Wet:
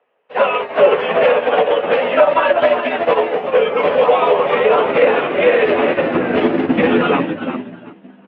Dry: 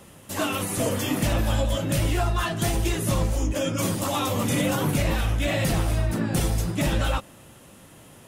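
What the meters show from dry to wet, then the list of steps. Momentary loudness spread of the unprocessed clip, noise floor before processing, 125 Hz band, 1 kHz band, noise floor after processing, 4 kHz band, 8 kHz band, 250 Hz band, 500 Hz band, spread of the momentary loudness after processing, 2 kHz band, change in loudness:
2 LU, -49 dBFS, -9.0 dB, +14.0 dB, -45 dBFS, +4.0 dB, under -35 dB, +6.5 dB, +17.5 dB, 5 LU, +12.0 dB, +10.5 dB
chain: notch 410 Hz, Q 12; vibrato 9.9 Hz 14 cents; frequency-shifting echo 0.362 s, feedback 45%, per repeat +77 Hz, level -8 dB; mistuned SSB -88 Hz 170–2900 Hz; doubler 12 ms -9 dB; high-pass sweep 530 Hz -> 220 Hz, 4.44–8.02; maximiser +18.5 dB; upward expander 2.5:1, over -28 dBFS

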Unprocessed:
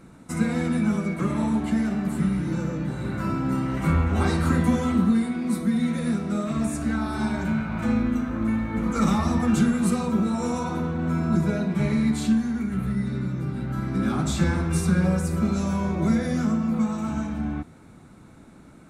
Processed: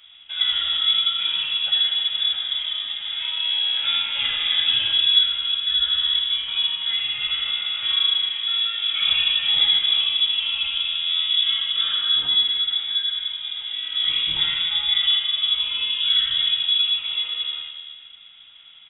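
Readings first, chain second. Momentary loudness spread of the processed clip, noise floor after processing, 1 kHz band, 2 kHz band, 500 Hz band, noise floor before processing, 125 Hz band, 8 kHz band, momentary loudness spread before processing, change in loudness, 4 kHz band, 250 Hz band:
8 LU, -46 dBFS, -8.5 dB, +4.5 dB, under -20 dB, -48 dBFS, under -25 dB, under -40 dB, 6 LU, +5.5 dB, +28.5 dB, under -35 dB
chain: HPF 140 Hz 24 dB/oct; notch 1300 Hz, Q 9.1; reverse bouncing-ball echo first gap 80 ms, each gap 1.25×, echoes 5; inverted band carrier 3600 Hz

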